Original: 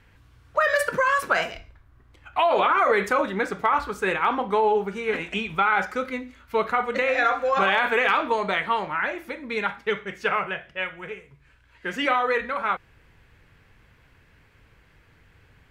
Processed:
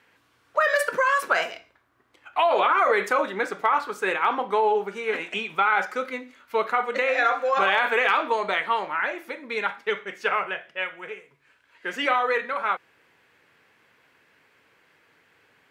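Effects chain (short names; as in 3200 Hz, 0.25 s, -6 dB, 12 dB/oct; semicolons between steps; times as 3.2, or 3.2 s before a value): HPF 320 Hz 12 dB/oct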